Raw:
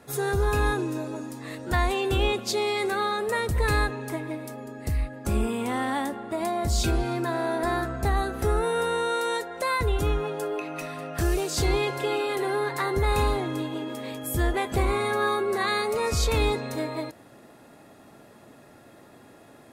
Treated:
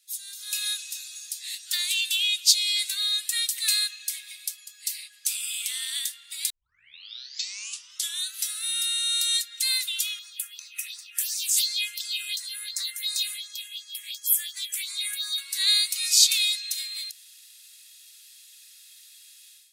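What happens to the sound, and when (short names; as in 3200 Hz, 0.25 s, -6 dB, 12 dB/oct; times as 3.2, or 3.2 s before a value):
6.5 tape start 1.83 s
10.19–15.38 phaser stages 4, 2.8 Hz, lowest notch 680–3000 Hz
whole clip: inverse Chebyshev high-pass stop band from 760 Hz, stop band 70 dB; AGC gain up to 15 dB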